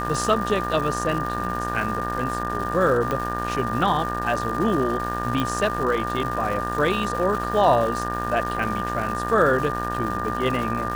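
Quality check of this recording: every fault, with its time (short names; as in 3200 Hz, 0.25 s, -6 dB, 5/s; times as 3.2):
buzz 60 Hz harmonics 31 -30 dBFS
crackle 410/s -30 dBFS
tone 1200 Hz -28 dBFS
3.11 pop -12 dBFS
5.4 pop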